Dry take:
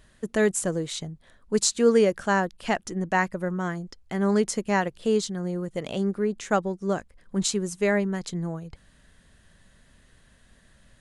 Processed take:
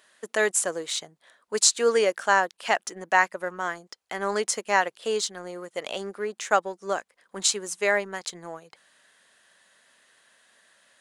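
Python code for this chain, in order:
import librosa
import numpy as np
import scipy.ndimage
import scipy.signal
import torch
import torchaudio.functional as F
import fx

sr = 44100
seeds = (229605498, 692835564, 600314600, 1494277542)

p1 = scipy.signal.sosfilt(scipy.signal.butter(2, 630.0, 'highpass', fs=sr, output='sos'), x)
p2 = np.sign(p1) * np.maximum(np.abs(p1) - 10.0 ** (-44.0 / 20.0), 0.0)
p3 = p1 + F.gain(torch.from_numpy(p2), -10.5).numpy()
y = F.gain(torch.from_numpy(p3), 2.5).numpy()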